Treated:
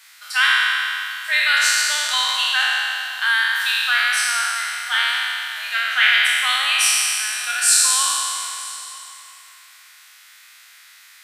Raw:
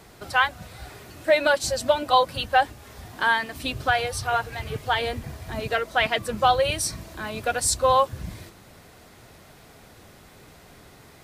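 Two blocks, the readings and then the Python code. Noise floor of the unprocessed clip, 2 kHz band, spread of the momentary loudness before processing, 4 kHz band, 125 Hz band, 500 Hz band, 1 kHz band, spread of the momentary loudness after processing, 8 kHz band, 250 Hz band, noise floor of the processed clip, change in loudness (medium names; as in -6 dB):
-50 dBFS, +10.0 dB, 17 LU, +12.0 dB, under -40 dB, under -20 dB, -2.5 dB, 11 LU, +12.5 dB, under -40 dB, -47 dBFS, +6.5 dB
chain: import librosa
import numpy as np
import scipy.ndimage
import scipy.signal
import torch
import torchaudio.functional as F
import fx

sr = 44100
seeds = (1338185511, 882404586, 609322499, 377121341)

p1 = fx.spec_trails(x, sr, decay_s=2.72)
p2 = scipy.signal.sosfilt(scipy.signal.butter(4, 1500.0, 'highpass', fs=sr, output='sos'), p1)
p3 = p2 + fx.echo_single(p2, sr, ms=948, db=-21.0, dry=0)
y = p3 * 10.0 ** (4.5 / 20.0)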